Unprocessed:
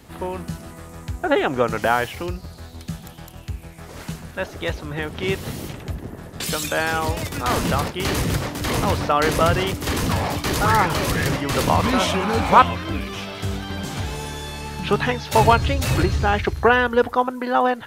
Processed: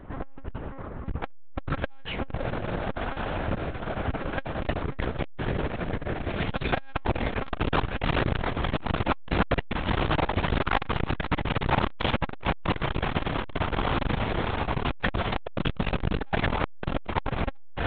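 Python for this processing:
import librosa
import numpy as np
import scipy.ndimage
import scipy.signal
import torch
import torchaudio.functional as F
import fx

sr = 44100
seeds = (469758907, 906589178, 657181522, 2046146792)

p1 = fx.env_lowpass(x, sr, base_hz=1300.0, full_db=-12.5)
p2 = fx.rider(p1, sr, range_db=5, speed_s=2.0)
p3 = p1 + F.gain(torch.from_numpy(p2), 1.0).numpy()
p4 = fx.cheby_harmonics(p3, sr, harmonics=(6, 8), levels_db=(-29, -15), full_scale_db=5.5)
p5 = np.clip(p4, -10.0 ** (-8.0 / 20.0), 10.0 ** (-8.0 / 20.0))
p6 = p5 + fx.echo_diffused(p5, sr, ms=1162, feedback_pct=76, wet_db=-8, dry=0)
p7 = fx.lpc_monotone(p6, sr, seeds[0], pitch_hz=270.0, order=8)
p8 = fx.transformer_sat(p7, sr, knee_hz=400.0)
y = F.gain(torch.from_numpy(p8), -6.0).numpy()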